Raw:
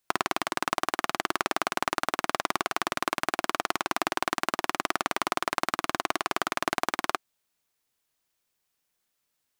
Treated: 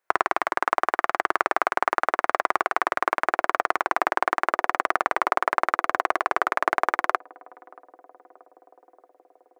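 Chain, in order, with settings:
high-pass filter 71 Hz 24 dB per octave
flat-topped bell 900 Hz +15 dB 2.9 octaves
on a send: feedback echo with a band-pass in the loop 630 ms, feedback 81%, band-pass 450 Hz, level −22 dB
on the sum: level −8.5 dB

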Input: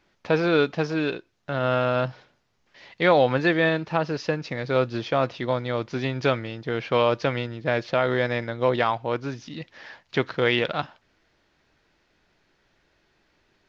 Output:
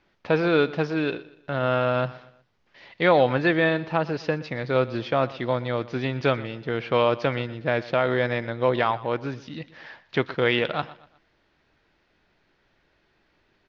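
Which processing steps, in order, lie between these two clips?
low-pass filter 4,500 Hz 12 dB per octave
on a send: repeating echo 121 ms, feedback 38%, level −18.5 dB

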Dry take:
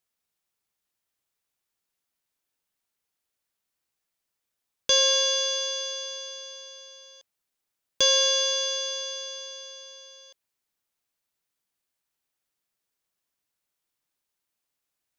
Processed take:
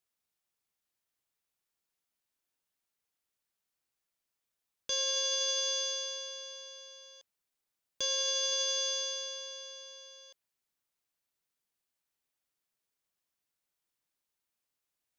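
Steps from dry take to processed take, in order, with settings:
dynamic equaliser 6,800 Hz, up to +4 dB, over −37 dBFS, Q 0.75
brickwall limiter −19.5 dBFS, peak gain reduction 11 dB
level −4 dB

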